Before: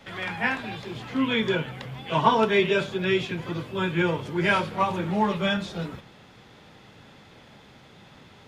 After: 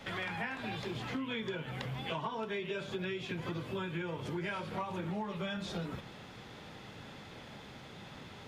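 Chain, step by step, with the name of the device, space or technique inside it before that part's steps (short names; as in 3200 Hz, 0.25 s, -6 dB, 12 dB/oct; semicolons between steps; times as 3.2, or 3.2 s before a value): serial compression, peaks first (compressor 6:1, threshold -30 dBFS, peak gain reduction 15.5 dB; compressor 2.5:1, threshold -38 dBFS, peak gain reduction 8 dB); gain +1 dB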